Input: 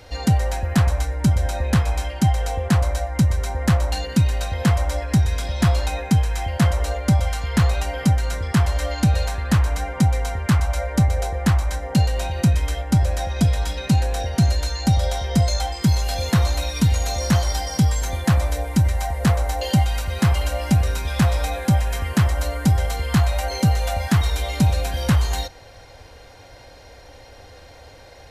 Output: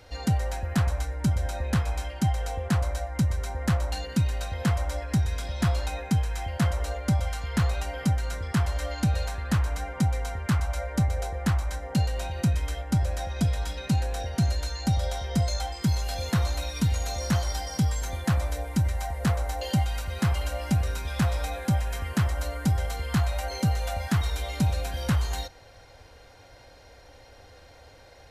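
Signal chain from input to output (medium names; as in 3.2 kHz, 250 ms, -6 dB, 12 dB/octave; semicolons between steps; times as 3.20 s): peaking EQ 1.4 kHz +2.5 dB 0.28 oct; trim -7 dB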